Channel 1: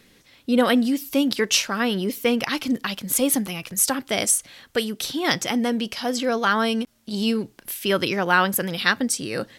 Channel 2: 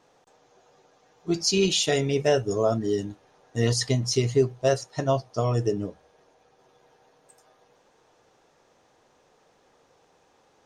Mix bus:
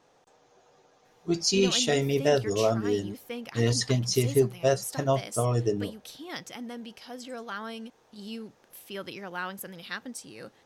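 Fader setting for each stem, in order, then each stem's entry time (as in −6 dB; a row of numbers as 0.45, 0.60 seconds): −16.5, −1.5 decibels; 1.05, 0.00 seconds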